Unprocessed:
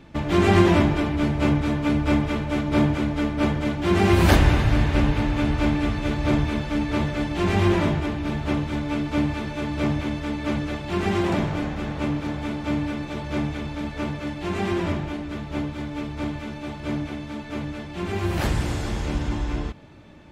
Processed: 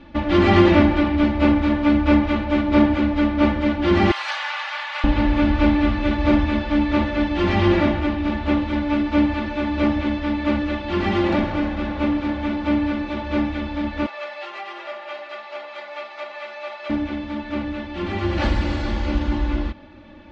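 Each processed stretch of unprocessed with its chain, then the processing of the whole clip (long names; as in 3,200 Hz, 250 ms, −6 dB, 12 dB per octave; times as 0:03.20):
0:04.11–0:05.04: inverse Chebyshev high-pass filter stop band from 260 Hz, stop band 60 dB + high-shelf EQ 9,700 Hz +10.5 dB + downward compressor 3 to 1, threshold −26 dBFS
0:14.06–0:16.90: comb filter 5 ms, depth 71% + downward compressor 5 to 1, threshold −27 dBFS + high-pass filter 560 Hz 24 dB per octave
whole clip: low-pass filter 4,800 Hz 24 dB per octave; comb filter 3.5 ms, depth 85%; level +1 dB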